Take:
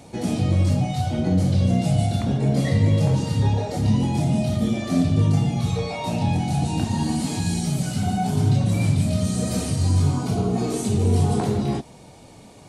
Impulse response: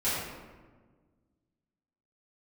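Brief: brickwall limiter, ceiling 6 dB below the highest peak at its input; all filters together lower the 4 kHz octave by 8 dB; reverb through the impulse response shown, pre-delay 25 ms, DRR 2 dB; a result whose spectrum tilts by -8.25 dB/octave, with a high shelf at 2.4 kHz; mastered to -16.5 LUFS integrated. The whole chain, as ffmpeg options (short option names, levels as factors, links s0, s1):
-filter_complex "[0:a]highshelf=f=2400:g=-3,equalizer=f=4000:t=o:g=-7.5,alimiter=limit=0.188:level=0:latency=1,asplit=2[s0][s1];[1:a]atrim=start_sample=2205,adelay=25[s2];[s1][s2]afir=irnorm=-1:irlink=0,volume=0.251[s3];[s0][s3]amix=inputs=2:normalize=0,volume=1.5"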